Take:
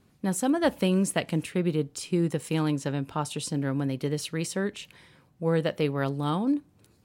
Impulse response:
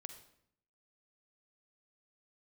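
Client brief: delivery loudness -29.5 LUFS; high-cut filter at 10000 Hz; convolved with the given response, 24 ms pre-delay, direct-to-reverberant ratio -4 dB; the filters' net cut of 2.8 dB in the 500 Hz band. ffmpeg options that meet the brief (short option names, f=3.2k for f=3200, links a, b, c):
-filter_complex "[0:a]lowpass=10k,equalizer=f=500:t=o:g=-3.5,asplit=2[a][b];[1:a]atrim=start_sample=2205,adelay=24[c];[b][c]afir=irnorm=-1:irlink=0,volume=9dB[d];[a][d]amix=inputs=2:normalize=0,volume=-5.5dB"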